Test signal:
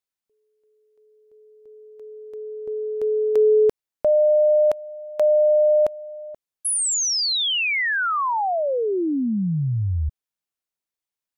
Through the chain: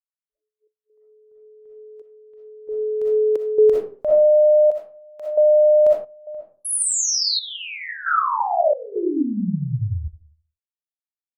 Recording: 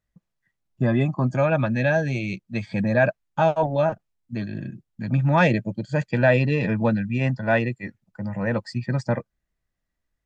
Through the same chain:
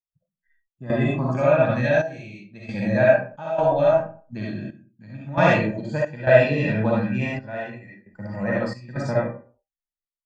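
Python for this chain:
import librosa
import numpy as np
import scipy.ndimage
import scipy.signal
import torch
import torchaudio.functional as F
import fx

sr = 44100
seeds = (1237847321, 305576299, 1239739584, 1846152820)

y = fx.rev_freeverb(x, sr, rt60_s=0.43, hf_ratio=0.6, predelay_ms=20, drr_db=-5.5)
y = fx.step_gate(y, sr, bpm=67, pattern='xxx.xxxxx...', floor_db=-12.0, edge_ms=4.5)
y = fx.noise_reduce_blind(y, sr, reduce_db=27)
y = F.gain(torch.from_numpy(y), -4.5).numpy()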